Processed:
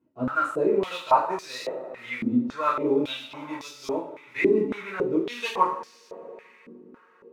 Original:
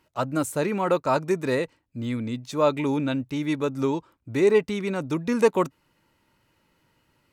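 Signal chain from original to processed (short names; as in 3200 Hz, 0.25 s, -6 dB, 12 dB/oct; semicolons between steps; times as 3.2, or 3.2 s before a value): modulation noise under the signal 21 dB; two-slope reverb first 0.49 s, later 4.8 s, from -22 dB, DRR -7.5 dB; stepped band-pass 3.6 Hz 270–5000 Hz; gain +2.5 dB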